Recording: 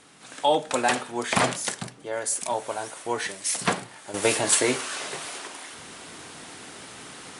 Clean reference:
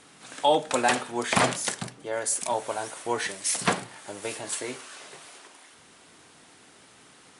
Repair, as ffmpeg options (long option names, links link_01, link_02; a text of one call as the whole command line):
ffmpeg -i in.wav -af "asetnsamples=nb_out_samples=441:pad=0,asendcmd='4.14 volume volume -11.5dB',volume=0dB" out.wav